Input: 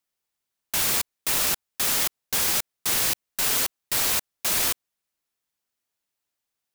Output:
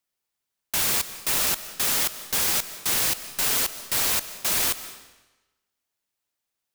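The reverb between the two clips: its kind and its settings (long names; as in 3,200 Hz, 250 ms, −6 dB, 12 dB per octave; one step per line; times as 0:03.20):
comb and all-pass reverb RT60 1.1 s, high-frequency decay 0.95×, pre-delay 110 ms, DRR 13.5 dB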